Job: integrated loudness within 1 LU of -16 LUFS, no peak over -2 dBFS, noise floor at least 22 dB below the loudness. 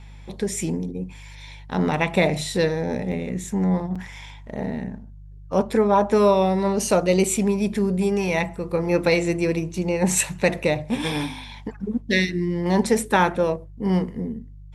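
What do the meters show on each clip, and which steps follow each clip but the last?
dropouts 2; longest dropout 5.9 ms; hum 50 Hz; harmonics up to 150 Hz; hum level -39 dBFS; loudness -22.5 LUFS; peak -5.0 dBFS; loudness target -16.0 LUFS
-> interpolate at 3.12/3.95, 5.9 ms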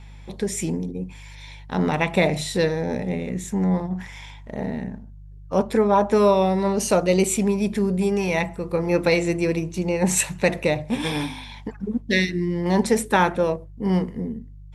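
dropouts 0; hum 50 Hz; harmonics up to 150 Hz; hum level -39 dBFS
-> de-hum 50 Hz, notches 3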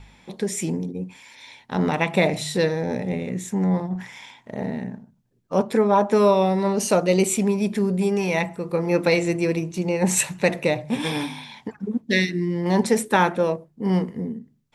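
hum none; loudness -22.5 LUFS; peak -5.0 dBFS; loudness target -16.0 LUFS
-> gain +6.5 dB; limiter -2 dBFS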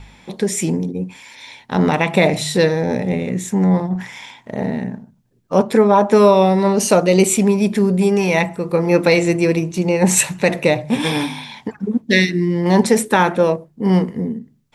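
loudness -16.5 LUFS; peak -2.0 dBFS; noise floor -54 dBFS

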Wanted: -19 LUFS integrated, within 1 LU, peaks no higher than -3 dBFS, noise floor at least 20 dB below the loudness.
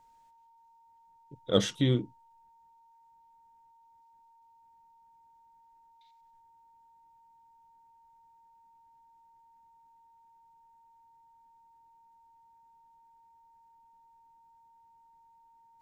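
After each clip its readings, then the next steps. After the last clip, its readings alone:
steady tone 920 Hz; tone level -59 dBFS; loudness -29.5 LUFS; peak -10.0 dBFS; loudness target -19.0 LUFS
-> notch 920 Hz, Q 30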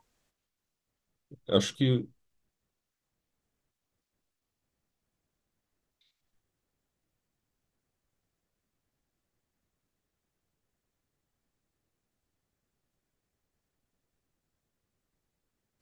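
steady tone none; loudness -28.5 LUFS; peak -10.0 dBFS; loudness target -19.0 LUFS
-> gain +9.5 dB; limiter -3 dBFS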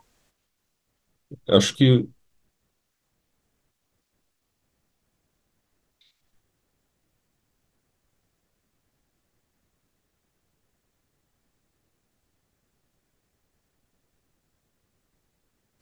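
loudness -19.5 LUFS; peak -3.0 dBFS; noise floor -76 dBFS

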